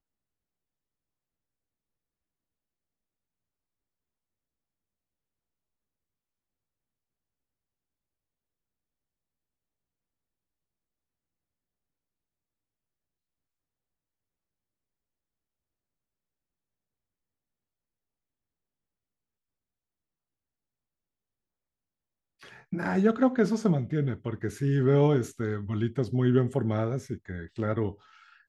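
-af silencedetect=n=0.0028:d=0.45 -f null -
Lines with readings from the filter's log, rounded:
silence_start: 0.00
silence_end: 22.41 | silence_duration: 22.41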